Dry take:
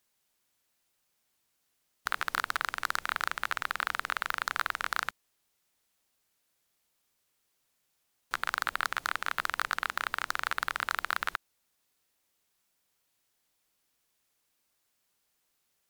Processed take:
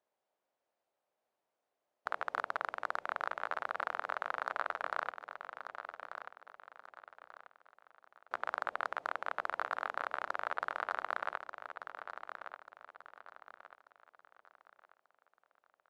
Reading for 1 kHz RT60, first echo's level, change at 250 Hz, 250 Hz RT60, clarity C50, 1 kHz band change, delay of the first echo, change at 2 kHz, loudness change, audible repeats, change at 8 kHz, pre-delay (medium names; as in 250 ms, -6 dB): no reverb, -9.0 dB, -5.0 dB, no reverb, no reverb, -3.0 dB, 1188 ms, -7.5 dB, -7.0 dB, 4, under -20 dB, no reverb